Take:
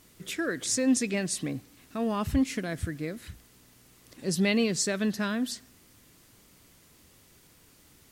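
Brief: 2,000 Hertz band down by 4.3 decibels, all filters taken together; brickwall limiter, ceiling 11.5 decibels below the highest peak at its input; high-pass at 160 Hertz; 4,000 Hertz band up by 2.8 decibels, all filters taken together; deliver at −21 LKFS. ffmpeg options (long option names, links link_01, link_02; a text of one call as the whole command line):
ffmpeg -i in.wav -af "highpass=160,equalizer=frequency=2000:width_type=o:gain=-7,equalizer=frequency=4000:width_type=o:gain=5.5,volume=14.5dB,alimiter=limit=-11.5dB:level=0:latency=1" out.wav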